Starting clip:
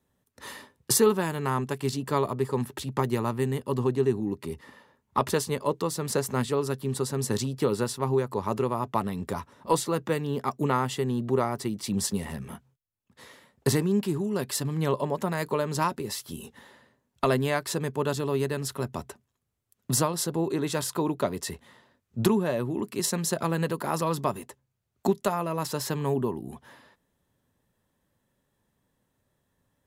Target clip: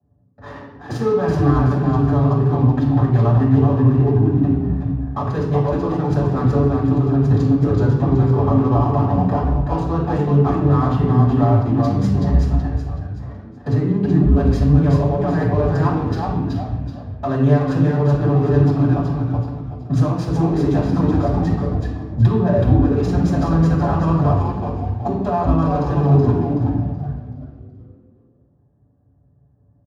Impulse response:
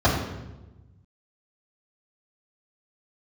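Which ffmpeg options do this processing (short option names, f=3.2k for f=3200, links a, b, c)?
-filter_complex "[0:a]highpass=f=56:w=0.5412,highpass=f=56:w=1.3066,aecho=1:1:7:0.47,asplit=2[a][b];[b]acompressor=threshold=-34dB:ratio=6,volume=1dB[c];[a][c]amix=inputs=2:normalize=0,alimiter=limit=-14dB:level=0:latency=1:release=63,adynamicsmooth=sensitivity=4.5:basefreq=690,asplit=6[d][e][f][g][h][i];[e]adelay=376,afreqshift=-130,volume=-3dB[j];[f]adelay=752,afreqshift=-260,volume=-11.4dB[k];[g]adelay=1128,afreqshift=-390,volume=-19.8dB[l];[h]adelay=1504,afreqshift=-520,volume=-28.2dB[m];[i]adelay=1880,afreqshift=-650,volume=-36.6dB[n];[d][j][k][l][m][n]amix=inputs=6:normalize=0[o];[1:a]atrim=start_sample=2205,afade=t=out:st=0.35:d=0.01,atrim=end_sample=15876[p];[o][p]afir=irnorm=-1:irlink=0,volume=-17.5dB"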